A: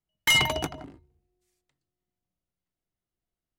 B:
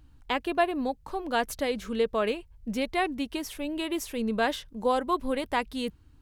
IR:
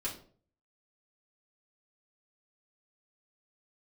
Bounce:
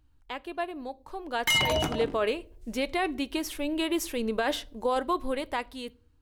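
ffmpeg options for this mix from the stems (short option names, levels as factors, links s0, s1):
-filter_complex "[0:a]adelay=1200,volume=0.841,asplit=2[s0][s1];[s1]volume=0.133[s2];[1:a]equalizer=f=190:w=4.1:g=-15,volume=0.355,asplit=2[s3][s4];[s4]volume=0.126[s5];[2:a]atrim=start_sample=2205[s6];[s2][s5]amix=inputs=2:normalize=0[s7];[s7][s6]afir=irnorm=-1:irlink=0[s8];[s0][s3][s8]amix=inputs=3:normalize=0,dynaudnorm=f=430:g=7:m=3.76,alimiter=limit=0.126:level=0:latency=1:release=13"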